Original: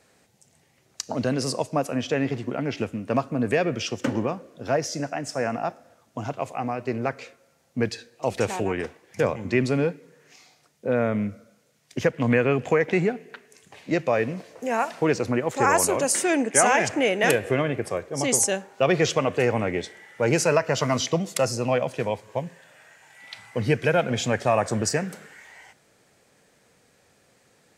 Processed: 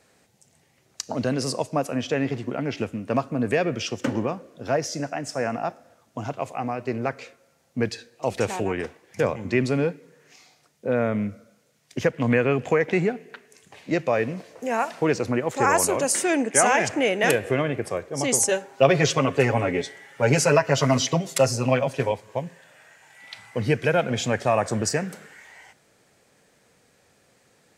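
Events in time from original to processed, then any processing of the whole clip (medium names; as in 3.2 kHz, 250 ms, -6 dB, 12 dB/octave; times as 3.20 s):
18.48–22.12 s: comb 7.3 ms, depth 86%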